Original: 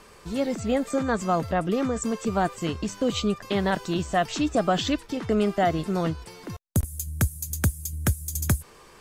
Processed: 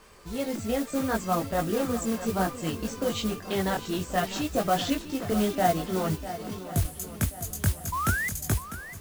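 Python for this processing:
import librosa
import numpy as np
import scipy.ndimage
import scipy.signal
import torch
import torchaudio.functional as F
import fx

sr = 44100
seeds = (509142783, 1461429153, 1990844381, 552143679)

y = fx.chorus_voices(x, sr, voices=4, hz=0.63, base_ms=20, depth_ms=2.3, mix_pct=45)
y = fx.spec_paint(y, sr, seeds[0], shape='rise', start_s=7.92, length_s=0.37, low_hz=970.0, high_hz=2100.0, level_db=-29.0)
y = fx.echo_swing(y, sr, ms=1082, ratio=1.5, feedback_pct=37, wet_db=-13)
y = fx.mod_noise(y, sr, seeds[1], snr_db=15)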